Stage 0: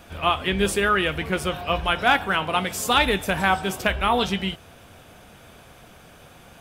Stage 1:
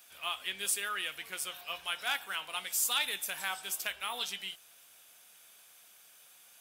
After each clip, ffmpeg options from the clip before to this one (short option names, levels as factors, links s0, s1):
-af "aderivative,volume=0.841"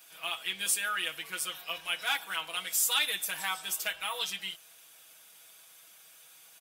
-af "aecho=1:1:6.2:0.96"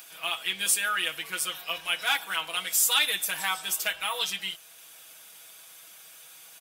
-af "acompressor=mode=upward:threshold=0.00355:ratio=2.5,volume=1.68"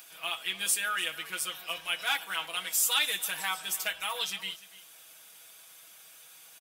-af "aecho=1:1:295:0.126,volume=0.668"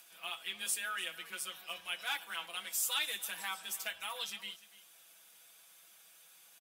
-af "afreqshift=16,volume=0.422"